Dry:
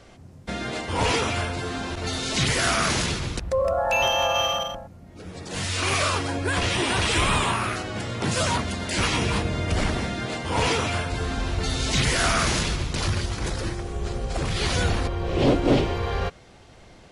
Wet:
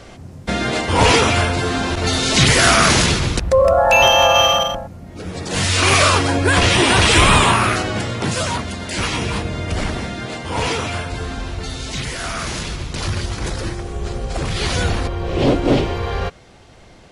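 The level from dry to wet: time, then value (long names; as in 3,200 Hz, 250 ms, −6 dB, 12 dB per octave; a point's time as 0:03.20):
0:07.87 +10 dB
0:08.45 +2 dB
0:11.16 +2 dB
0:12.19 −4.5 dB
0:13.29 +4 dB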